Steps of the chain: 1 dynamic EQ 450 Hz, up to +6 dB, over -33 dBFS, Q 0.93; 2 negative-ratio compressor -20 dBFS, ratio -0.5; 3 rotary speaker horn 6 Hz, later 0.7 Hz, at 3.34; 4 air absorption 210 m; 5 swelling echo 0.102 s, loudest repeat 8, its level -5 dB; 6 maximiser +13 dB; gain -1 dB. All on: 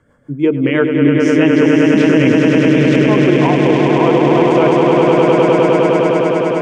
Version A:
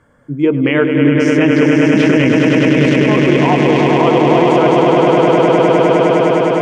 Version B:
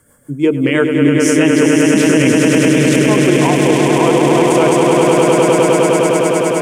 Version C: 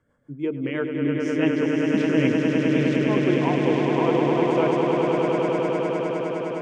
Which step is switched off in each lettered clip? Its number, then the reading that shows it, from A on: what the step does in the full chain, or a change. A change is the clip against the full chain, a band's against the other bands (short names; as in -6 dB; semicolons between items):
3, 250 Hz band -2.0 dB; 4, 4 kHz band +4.0 dB; 6, crest factor change +5.5 dB